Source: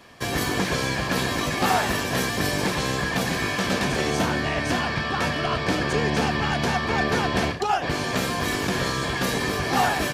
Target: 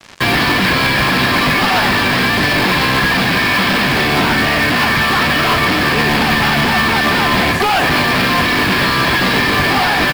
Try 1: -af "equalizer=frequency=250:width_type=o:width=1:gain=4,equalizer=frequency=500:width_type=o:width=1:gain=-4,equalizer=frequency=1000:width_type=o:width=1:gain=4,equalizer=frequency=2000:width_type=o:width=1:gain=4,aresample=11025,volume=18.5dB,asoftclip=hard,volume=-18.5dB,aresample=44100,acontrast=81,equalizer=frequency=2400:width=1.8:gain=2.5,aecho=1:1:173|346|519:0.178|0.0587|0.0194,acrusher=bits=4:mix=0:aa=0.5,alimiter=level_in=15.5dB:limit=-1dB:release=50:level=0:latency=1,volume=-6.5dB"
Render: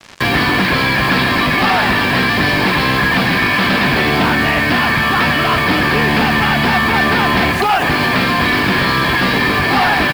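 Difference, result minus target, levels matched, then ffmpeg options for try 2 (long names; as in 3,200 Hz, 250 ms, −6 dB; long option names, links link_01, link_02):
gain into a clipping stage and back: distortion −7 dB
-af "equalizer=frequency=250:width_type=o:width=1:gain=4,equalizer=frequency=500:width_type=o:width=1:gain=-4,equalizer=frequency=1000:width_type=o:width=1:gain=4,equalizer=frequency=2000:width_type=o:width=1:gain=4,aresample=11025,volume=27.5dB,asoftclip=hard,volume=-27.5dB,aresample=44100,acontrast=81,equalizer=frequency=2400:width=1.8:gain=2.5,aecho=1:1:173|346|519:0.178|0.0587|0.0194,acrusher=bits=4:mix=0:aa=0.5,alimiter=level_in=15.5dB:limit=-1dB:release=50:level=0:latency=1,volume=-6.5dB"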